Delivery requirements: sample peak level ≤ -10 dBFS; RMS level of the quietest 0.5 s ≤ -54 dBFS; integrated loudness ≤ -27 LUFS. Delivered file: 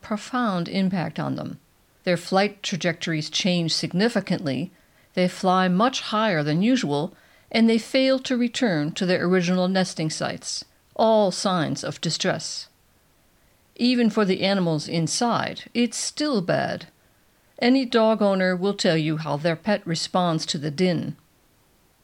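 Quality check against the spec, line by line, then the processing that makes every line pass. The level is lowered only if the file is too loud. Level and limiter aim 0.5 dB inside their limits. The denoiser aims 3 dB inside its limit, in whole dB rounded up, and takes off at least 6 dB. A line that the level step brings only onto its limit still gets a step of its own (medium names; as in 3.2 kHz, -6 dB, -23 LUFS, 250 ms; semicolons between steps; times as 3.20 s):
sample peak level -7.5 dBFS: fail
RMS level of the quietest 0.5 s -61 dBFS: pass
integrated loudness -23.0 LUFS: fail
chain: trim -4.5 dB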